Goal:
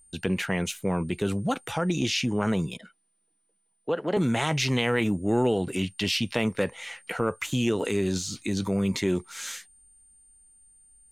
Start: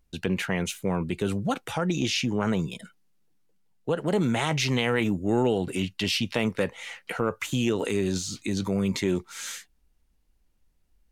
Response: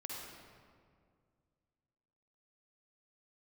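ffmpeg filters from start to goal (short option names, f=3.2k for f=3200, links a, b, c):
-filter_complex "[0:a]aeval=exprs='val(0)+0.00178*sin(2*PI*9000*n/s)':c=same,asettb=1/sr,asplit=3[a][b][c];[a]atrim=end=2.774[d];[b]atrim=start=2.77:end=4.17,asetpts=PTS-STARTPTS,afade=t=in:d=0.004:c=qsin,afade=t=out:st=1.396:d=0.004:c=qsin,acrossover=split=220 5100:gain=0.224 1 0.0891[e][f][g];[e][f][g]amix=inputs=3:normalize=0[h];[c]atrim=start=4.166[i];[d][h]acrossfade=d=0.004:c1=hsin:c2=qsin[j];[j][i]acrossfade=d=0.004:c1=qsin:c2=hsin"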